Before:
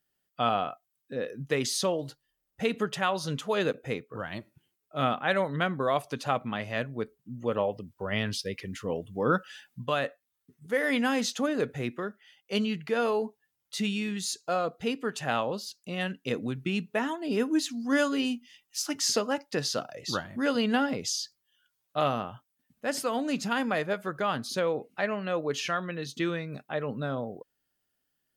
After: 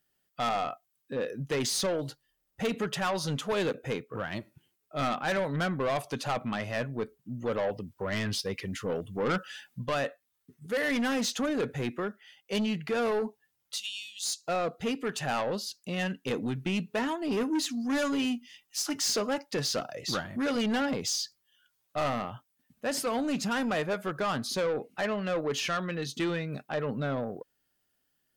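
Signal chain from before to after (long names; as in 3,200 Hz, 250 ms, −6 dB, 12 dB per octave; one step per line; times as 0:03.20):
0:13.76–0:14.43: elliptic high-pass filter 2,900 Hz, stop band 50 dB
soft clipping −27.5 dBFS, distortion −9 dB
level +3 dB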